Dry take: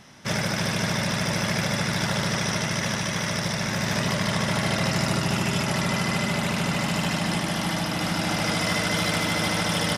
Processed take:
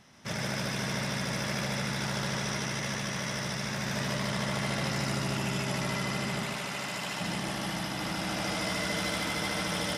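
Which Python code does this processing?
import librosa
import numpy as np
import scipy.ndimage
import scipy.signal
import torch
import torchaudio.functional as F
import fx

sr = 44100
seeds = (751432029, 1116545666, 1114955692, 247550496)

p1 = fx.low_shelf(x, sr, hz=280.0, db=-11.5, at=(6.43, 7.2))
p2 = p1 + fx.echo_single(p1, sr, ms=135, db=-3.0, dry=0)
y = F.gain(torch.from_numpy(p2), -8.5).numpy()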